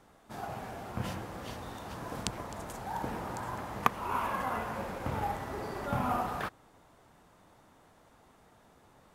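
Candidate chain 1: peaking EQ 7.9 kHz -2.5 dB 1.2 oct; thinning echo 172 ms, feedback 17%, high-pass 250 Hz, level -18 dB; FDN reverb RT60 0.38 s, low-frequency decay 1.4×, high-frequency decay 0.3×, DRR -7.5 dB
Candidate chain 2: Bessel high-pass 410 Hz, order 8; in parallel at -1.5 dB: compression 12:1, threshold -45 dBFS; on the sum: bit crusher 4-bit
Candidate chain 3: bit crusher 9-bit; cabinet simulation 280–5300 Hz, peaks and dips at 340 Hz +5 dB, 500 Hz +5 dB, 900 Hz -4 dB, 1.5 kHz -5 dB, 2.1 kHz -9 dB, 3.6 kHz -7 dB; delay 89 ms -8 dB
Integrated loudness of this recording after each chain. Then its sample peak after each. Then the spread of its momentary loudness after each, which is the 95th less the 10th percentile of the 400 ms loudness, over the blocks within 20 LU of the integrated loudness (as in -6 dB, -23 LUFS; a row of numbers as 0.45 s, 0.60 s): -26.5 LUFS, -38.0 LUFS, -38.0 LUFS; -5.0 dBFS, -7.5 dBFS, -9.5 dBFS; 10 LU, 21 LU, 10 LU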